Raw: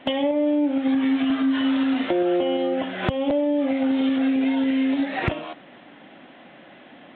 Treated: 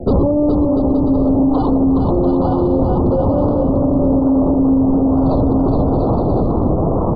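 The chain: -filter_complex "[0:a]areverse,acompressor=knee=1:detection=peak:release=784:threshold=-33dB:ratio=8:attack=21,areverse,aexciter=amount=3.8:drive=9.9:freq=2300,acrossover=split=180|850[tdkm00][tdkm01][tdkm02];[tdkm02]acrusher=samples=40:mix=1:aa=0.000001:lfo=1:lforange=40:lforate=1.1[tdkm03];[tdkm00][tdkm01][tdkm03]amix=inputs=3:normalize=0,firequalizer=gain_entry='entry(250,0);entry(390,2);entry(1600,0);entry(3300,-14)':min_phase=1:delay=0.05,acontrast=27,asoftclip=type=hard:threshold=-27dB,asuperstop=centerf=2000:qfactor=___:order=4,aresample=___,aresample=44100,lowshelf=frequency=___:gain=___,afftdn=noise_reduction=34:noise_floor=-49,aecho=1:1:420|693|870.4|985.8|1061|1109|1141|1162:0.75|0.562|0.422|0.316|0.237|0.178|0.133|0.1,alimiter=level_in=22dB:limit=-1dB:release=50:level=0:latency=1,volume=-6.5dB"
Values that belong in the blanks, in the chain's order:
0.62, 11025, 210, 6.5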